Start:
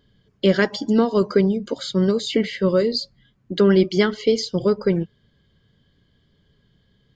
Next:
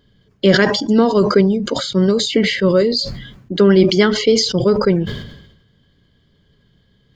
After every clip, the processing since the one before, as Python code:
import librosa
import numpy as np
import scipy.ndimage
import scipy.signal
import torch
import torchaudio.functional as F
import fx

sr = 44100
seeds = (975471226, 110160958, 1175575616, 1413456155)

y = fx.sustainer(x, sr, db_per_s=61.0)
y = y * librosa.db_to_amplitude(4.0)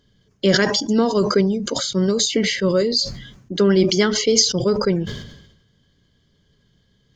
y = fx.peak_eq(x, sr, hz=6200.0, db=12.0, octaves=0.6)
y = y * librosa.db_to_amplitude(-4.5)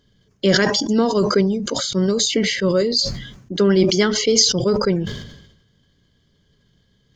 y = fx.sustainer(x, sr, db_per_s=67.0)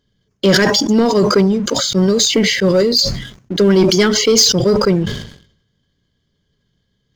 y = fx.leveller(x, sr, passes=2)
y = y * librosa.db_to_amplitude(-1.5)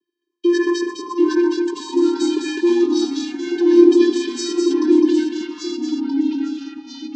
y = fx.echo_multitap(x, sr, ms=(122, 207, 760), db=(-16.5, -5.0, -12.5))
y = fx.vocoder(y, sr, bands=16, carrier='square', carrier_hz=347.0)
y = fx.echo_pitch(y, sr, ms=686, semitones=-2, count=3, db_per_echo=-6.0)
y = y * librosa.db_to_amplitude(-4.5)